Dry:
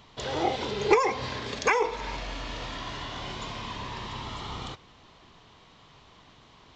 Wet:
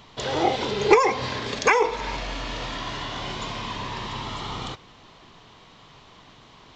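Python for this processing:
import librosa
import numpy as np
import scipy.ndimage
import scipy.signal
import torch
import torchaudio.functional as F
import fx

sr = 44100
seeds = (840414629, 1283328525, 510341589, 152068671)

y = fx.peak_eq(x, sr, hz=67.0, db=-7.5, octaves=0.5)
y = F.gain(torch.from_numpy(y), 5.0).numpy()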